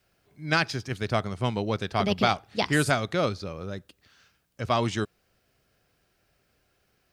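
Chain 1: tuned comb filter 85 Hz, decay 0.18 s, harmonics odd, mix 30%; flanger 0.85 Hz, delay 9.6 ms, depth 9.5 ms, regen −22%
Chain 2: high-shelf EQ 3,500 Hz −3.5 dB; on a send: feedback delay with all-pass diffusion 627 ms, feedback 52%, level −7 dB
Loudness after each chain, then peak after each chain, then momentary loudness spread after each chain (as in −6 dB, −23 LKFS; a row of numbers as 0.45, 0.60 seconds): −33.0, −28.0 LKFS; −14.0, −9.5 dBFS; 13, 17 LU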